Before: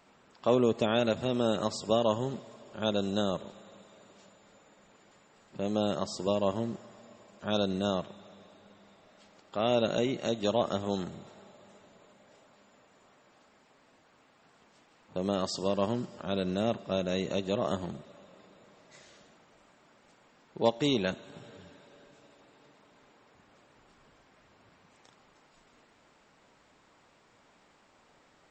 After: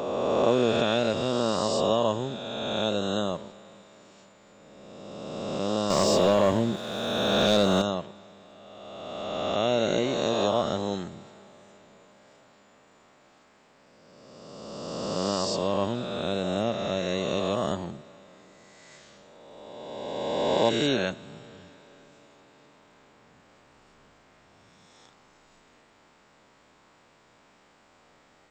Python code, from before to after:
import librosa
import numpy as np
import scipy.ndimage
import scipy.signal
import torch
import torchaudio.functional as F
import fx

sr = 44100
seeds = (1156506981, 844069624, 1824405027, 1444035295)

y = fx.spec_swells(x, sr, rise_s=2.48)
y = fx.leveller(y, sr, passes=2, at=(5.9, 7.82))